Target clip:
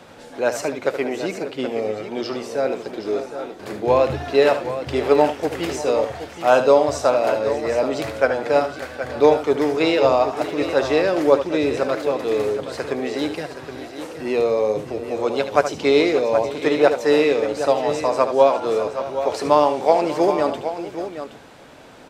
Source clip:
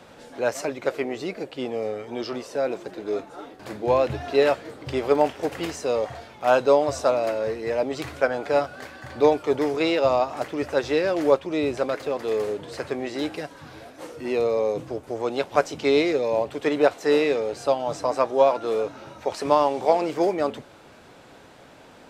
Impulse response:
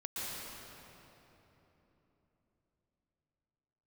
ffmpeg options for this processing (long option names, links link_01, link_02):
-af "bandreject=frequency=60:width_type=h:width=6,bandreject=frequency=120:width_type=h:width=6,aecho=1:1:74|590|772:0.299|0.158|0.299,volume=3.5dB"